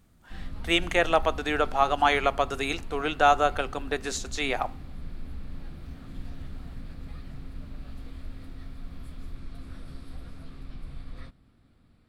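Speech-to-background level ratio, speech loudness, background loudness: 17.5 dB, -26.0 LUFS, -43.5 LUFS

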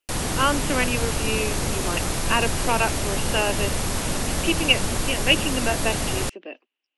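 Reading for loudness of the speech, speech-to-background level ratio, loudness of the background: -25.0 LUFS, 0.5 dB, -25.5 LUFS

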